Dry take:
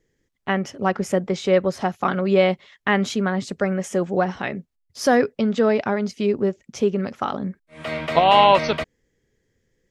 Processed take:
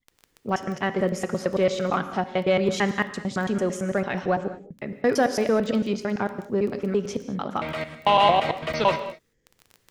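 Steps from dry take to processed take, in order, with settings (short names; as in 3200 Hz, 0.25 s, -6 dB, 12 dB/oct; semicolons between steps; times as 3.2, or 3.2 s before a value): slices in reverse order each 0.112 s, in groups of 4; in parallel at -7.5 dB: soft clip -15.5 dBFS, distortion -10 dB; on the sum: crackle 10/s -26 dBFS; non-linear reverb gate 0.24 s flat, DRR 10 dB; gain -5.5 dB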